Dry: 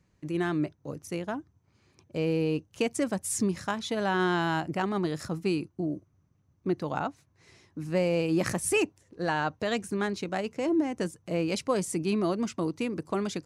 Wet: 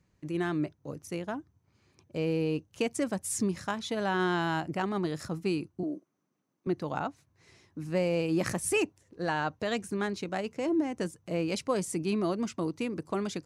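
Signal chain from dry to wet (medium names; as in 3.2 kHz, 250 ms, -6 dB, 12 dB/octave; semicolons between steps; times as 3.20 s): 5.83–6.67 s: high-pass 220 Hz 24 dB/octave; trim -2 dB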